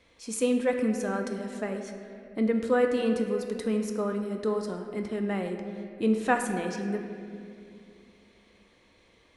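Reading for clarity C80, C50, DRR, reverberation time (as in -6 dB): 7.0 dB, 6.0 dB, 4.0 dB, 2.4 s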